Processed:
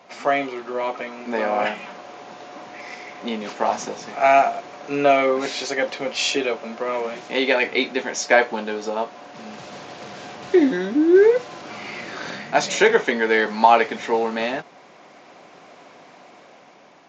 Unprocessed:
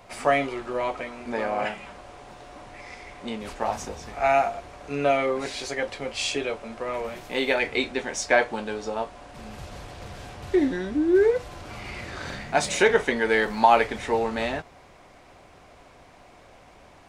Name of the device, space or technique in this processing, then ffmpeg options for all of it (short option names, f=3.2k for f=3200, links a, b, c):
Bluetooth headset: -af "highpass=f=170:w=0.5412,highpass=f=170:w=1.3066,dynaudnorm=f=310:g=7:m=5dB,aresample=16000,aresample=44100,volume=1dB" -ar 16000 -c:a sbc -b:a 64k